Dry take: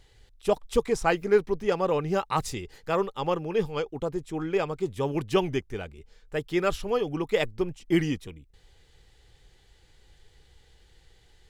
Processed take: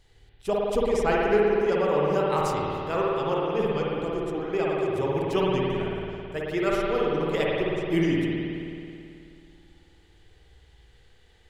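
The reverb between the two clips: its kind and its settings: spring tank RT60 2.6 s, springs 54 ms, chirp 65 ms, DRR -4.5 dB; gain -3.5 dB

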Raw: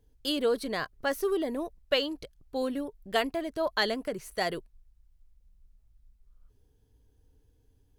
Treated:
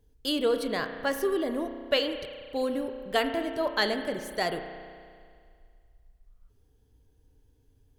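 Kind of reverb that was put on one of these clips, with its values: spring tank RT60 2.1 s, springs 33 ms, chirp 70 ms, DRR 7 dB; gain +1 dB

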